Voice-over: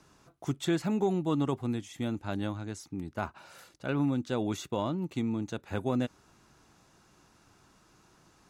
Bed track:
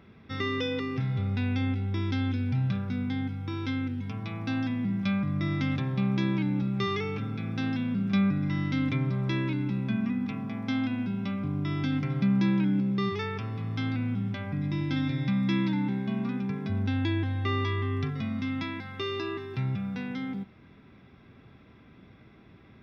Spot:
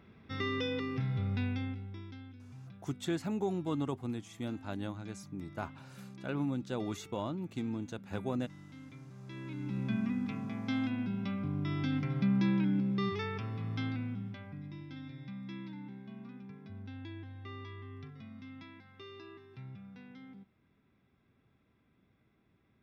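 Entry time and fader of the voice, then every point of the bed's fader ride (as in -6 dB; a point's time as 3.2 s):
2.40 s, -5.5 dB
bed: 1.41 s -4.5 dB
2.34 s -23 dB
9.12 s -23 dB
9.82 s -4.5 dB
13.76 s -4.5 dB
14.88 s -17.5 dB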